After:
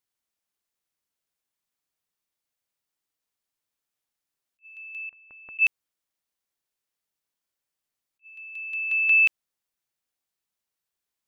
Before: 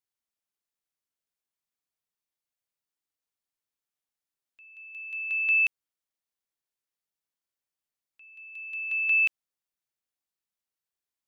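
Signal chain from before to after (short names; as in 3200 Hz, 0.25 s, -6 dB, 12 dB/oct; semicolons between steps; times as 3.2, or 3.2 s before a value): 5.09–5.59 LPF 1300 Hz 24 dB/oct; attack slew limiter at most 470 dB/s; gain +4.5 dB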